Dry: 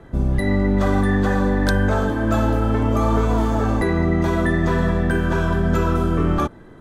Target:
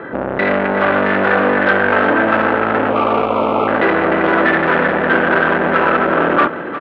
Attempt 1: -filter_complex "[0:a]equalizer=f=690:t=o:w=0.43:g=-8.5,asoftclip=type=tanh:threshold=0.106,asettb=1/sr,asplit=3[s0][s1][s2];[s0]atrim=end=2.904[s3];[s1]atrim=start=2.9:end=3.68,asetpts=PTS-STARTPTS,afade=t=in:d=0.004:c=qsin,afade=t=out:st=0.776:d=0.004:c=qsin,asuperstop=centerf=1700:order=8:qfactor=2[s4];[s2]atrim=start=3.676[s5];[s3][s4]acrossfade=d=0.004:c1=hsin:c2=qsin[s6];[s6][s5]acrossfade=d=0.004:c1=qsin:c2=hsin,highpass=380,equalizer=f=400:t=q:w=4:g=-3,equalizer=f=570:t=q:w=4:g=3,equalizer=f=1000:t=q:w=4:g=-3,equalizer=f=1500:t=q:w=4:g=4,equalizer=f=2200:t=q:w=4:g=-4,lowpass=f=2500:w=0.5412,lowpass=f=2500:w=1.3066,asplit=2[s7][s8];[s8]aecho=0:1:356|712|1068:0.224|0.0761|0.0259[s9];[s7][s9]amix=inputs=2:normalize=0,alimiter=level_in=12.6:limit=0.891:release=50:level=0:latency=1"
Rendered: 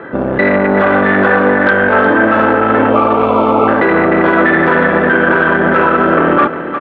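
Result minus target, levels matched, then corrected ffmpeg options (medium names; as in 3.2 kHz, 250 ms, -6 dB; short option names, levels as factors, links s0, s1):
saturation: distortion -5 dB
-filter_complex "[0:a]equalizer=f=690:t=o:w=0.43:g=-8.5,asoftclip=type=tanh:threshold=0.0355,asettb=1/sr,asplit=3[s0][s1][s2];[s0]atrim=end=2.904[s3];[s1]atrim=start=2.9:end=3.68,asetpts=PTS-STARTPTS,afade=t=in:d=0.004:c=qsin,afade=t=out:st=0.776:d=0.004:c=qsin,asuperstop=centerf=1700:order=8:qfactor=2[s4];[s2]atrim=start=3.676[s5];[s3][s4]acrossfade=d=0.004:c1=hsin:c2=qsin[s6];[s6][s5]acrossfade=d=0.004:c1=qsin:c2=hsin,highpass=380,equalizer=f=400:t=q:w=4:g=-3,equalizer=f=570:t=q:w=4:g=3,equalizer=f=1000:t=q:w=4:g=-3,equalizer=f=1500:t=q:w=4:g=4,equalizer=f=2200:t=q:w=4:g=-4,lowpass=f=2500:w=0.5412,lowpass=f=2500:w=1.3066,asplit=2[s7][s8];[s8]aecho=0:1:356|712|1068:0.224|0.0761|0.0259[s9];[s7][s9]amix=inputs=2:normalize=0,alimiter=level_in=12.6:limit=0.891:release=50:level=0:latency=1"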